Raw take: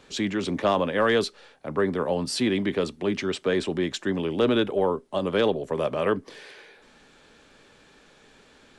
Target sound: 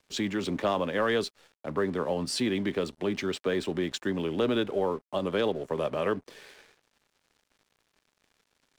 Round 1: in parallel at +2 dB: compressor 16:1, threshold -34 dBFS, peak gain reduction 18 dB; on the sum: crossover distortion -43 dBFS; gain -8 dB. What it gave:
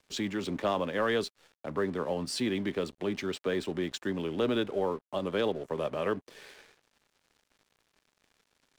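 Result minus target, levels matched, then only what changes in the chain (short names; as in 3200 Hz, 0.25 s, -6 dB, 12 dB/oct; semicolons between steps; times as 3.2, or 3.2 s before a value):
compressor: peak gain reduction +8 dB
change: compressor 16:1, threshold -25.5 dBFS, peak gain reduction 10 dB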